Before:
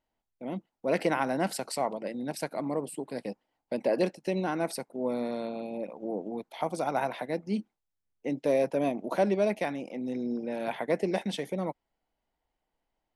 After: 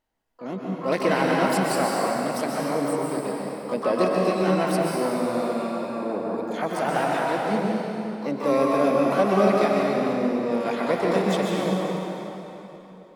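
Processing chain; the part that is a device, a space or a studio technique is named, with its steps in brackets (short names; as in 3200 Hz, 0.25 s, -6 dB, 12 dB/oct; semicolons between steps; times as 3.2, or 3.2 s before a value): shimmer-style reverb (harmoniser +12 st -9 dB; reverb RT60 3.4 s, pre-delay 0.117 s, DRR -3 dB); gain +2.5 dB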